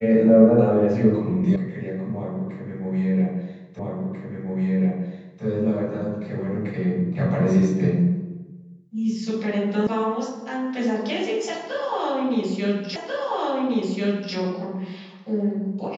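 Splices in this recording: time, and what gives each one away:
1.56 sound cut off
3.79 repeat of the last 1.64 s
9.87 sound cut off
12.96 repeat of the last 1.39 s

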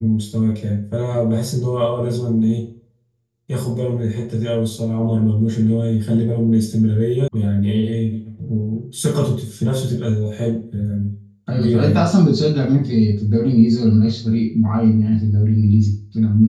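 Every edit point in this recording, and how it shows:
7.28 sound cut off

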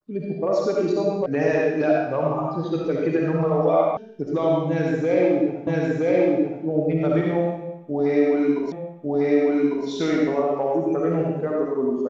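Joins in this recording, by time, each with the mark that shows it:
1.26 sound cut off
3.97 sound cut off
5.67 repeat of the last 0.97 s
8.72 repeat of the last 1.15 s

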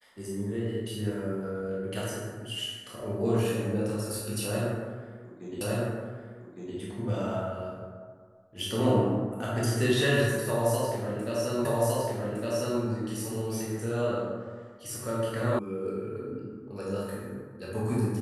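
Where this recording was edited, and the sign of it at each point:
5.61 repeat of the last 1.16 s
11.65 repeat of the last 1.16 s
15.59 sound cut off

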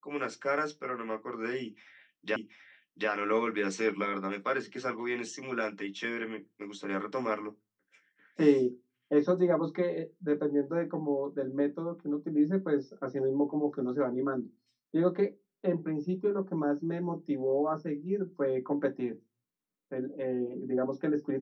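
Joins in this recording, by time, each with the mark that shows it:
2.36 repeat of the last 0.73 s

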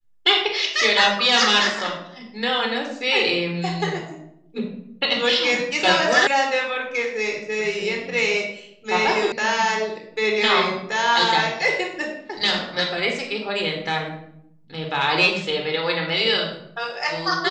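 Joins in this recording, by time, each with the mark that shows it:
6.27 sound cut off
9.32 sound cut off

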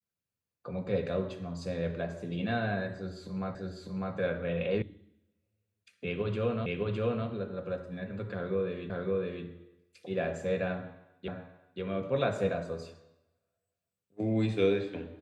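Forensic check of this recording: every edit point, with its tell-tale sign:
3.55 repeat of the last 0.6 s
4.82 sound cut off
6.66 repeat of the last 0.61 s
8.9 repeat of the last 0.56 s
11.28 repeat of the last 0.53 s

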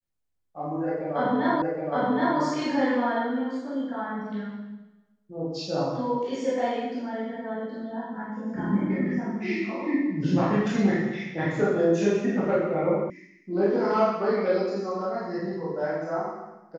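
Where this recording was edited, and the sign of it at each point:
1.62 repeat of the last 0.77 s
13.1 sound cut off

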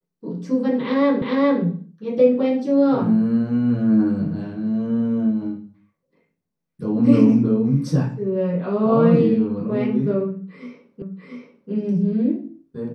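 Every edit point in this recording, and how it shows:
1.22 repeat of the last 0.41 s
11.02 repeat of the last 0.69 s

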